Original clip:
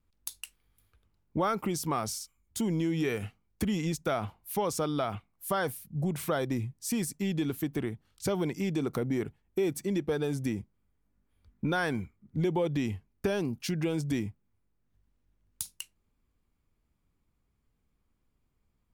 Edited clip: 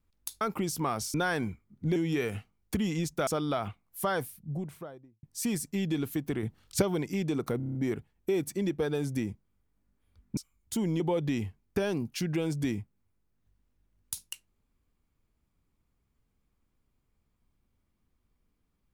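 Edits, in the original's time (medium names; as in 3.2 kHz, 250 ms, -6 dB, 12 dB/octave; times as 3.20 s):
0.41–1.48 s: delete
2.21–2.84 s: swap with 11.66–12.48 s
4.15–4.74 s: delete
5.55–6.70 s: studio fade out
7.90–8.29 s: gain +6 dB
9.04 s: stutter 0.03 s, 7 plays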